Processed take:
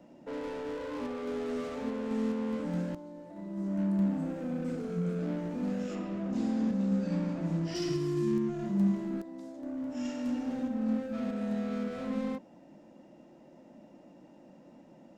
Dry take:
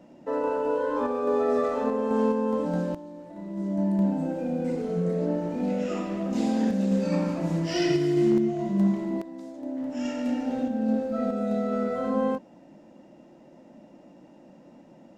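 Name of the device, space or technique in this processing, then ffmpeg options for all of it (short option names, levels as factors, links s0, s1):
one-band saturation: -filter_complex "[0:a]acrossover=split=310|4000[s0][s1][s2];[s1]asoftclip=type=tanh:threshold=0.0133[s3];[s0][s3][s2]amix=inputs=3:normalize=0,asettb=1/sr,asplit=3[s4][s5][s6];[s4]atrim=end=5.954[s7];[s5]atrim=start=5.95:end=7.75,asetpts=PTS-STARTPTS,afade=t=in:d=0.004:c=qsin,afade=t=out:st=1.796:d=0.004:c=qsin,aemphasis=mode=reproduction:type=50kf[s8];[s6]atrim=start=7.746[s9];[s7][s8]acrossfade=d=0.004:c1=hsin:c2=qsin[s10];[s10][s9]acrossfade=d=0.004:c1=qsin:c2=hsin,volume=0.668"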